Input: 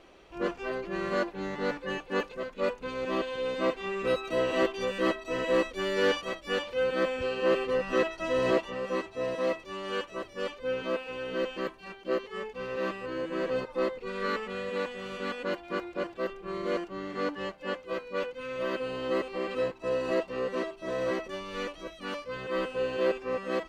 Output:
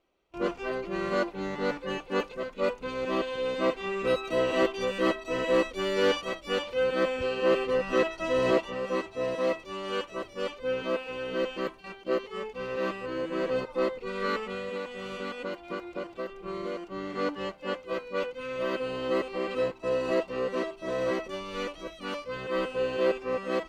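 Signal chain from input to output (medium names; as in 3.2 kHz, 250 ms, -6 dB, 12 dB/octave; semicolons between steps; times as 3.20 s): band-stop 1.7 kHz, Q 11; gate with hold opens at -39 dBFS; 14.53–16.92 s: compression, threshold -33 dBFS, peak gain reduction 8 dB; trim +1.5 dB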